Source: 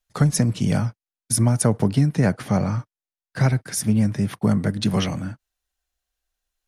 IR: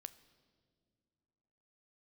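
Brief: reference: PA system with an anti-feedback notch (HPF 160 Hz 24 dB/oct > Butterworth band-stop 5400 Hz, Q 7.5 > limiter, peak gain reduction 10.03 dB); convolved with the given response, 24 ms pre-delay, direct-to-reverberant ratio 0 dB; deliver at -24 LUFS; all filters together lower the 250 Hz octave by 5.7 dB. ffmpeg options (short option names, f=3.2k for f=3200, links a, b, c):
-filter_complex "[0:a]equalizer=f=250:t=o:g=-6.5,asplit=2[a][b];[1:a]atrim=start_sample=2205,adelay=24[c];[b][c]afir=irnorm=-1:irlink=0,volume=5.5dB[d];[a][d]amix=inputs=2:normalize=0,highpass=f=160:w=0.5412,highpass=f=160:w=1.3066,asuperstop=centerf=5400:order=8:qfactor=7.5,volume=3dB,alimiter=limit=-13.5dB:level=0:latency=1"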